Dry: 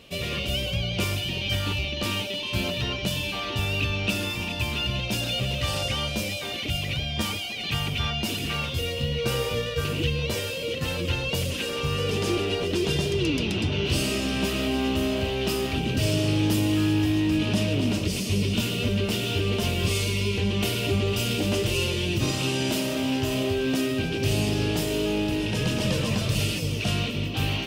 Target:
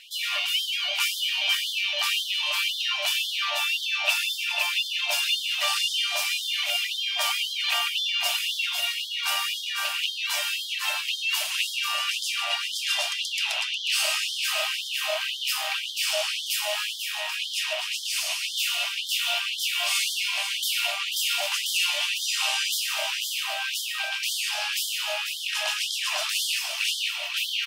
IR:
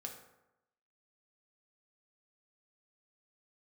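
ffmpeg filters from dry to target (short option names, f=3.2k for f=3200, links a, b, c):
-af "aecho=1:1:491:0.355,afftfilt=real='re*gte(b*sr/1024,570*pow(3100/570,0.5+0.5*sin(2*PI*1.9*pts/sr)))':imag='im*gte(b*sr/1024,570*pow(3100/570,0.5+0.5*sin(2*PI*1.9*pts/sr)))':win_size=1024:overlap=0.75,volume=5dB"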